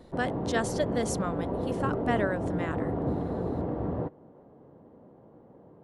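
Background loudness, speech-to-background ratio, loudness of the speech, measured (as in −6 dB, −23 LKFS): −32.0 LKFS, −0.5 dB, −32.5 LKFS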